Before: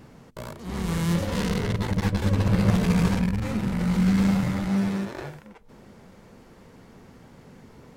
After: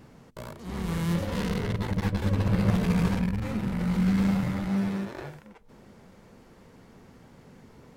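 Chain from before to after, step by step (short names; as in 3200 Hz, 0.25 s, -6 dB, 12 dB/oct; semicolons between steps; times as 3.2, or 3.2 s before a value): dynamic EQ 7000 Hz, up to -4 dB, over -50 dBFS, Q 0.82; gain -3 dB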